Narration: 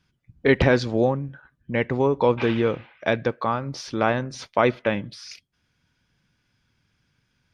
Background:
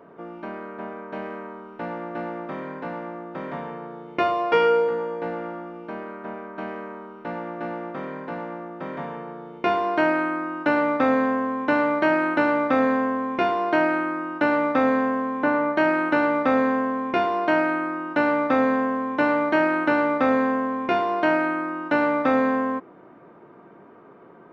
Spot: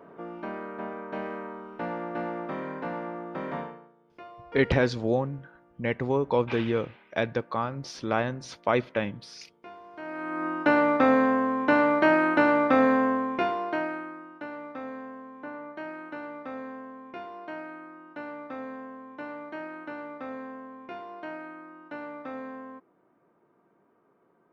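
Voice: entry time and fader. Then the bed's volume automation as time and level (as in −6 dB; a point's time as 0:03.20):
4.10 s, −5.0 dB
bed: 0:03.61 −1.5 dB
0:03.95 −24 dB
0:09.92 −24 dB
0:10.46 −0.5 dB
0:13.12 −0.5 dB
0:14.47 −18 dB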